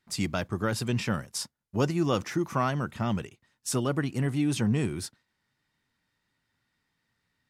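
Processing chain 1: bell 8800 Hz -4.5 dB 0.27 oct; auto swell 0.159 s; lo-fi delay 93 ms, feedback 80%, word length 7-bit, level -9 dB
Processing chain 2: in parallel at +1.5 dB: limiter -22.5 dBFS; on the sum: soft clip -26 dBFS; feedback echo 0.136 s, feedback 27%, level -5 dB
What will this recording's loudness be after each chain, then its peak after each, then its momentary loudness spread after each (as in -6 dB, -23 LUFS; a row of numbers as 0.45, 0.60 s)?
-31.0, -29.5 LUFS; -11.5, -21.0 dBFS; 15, 6 LU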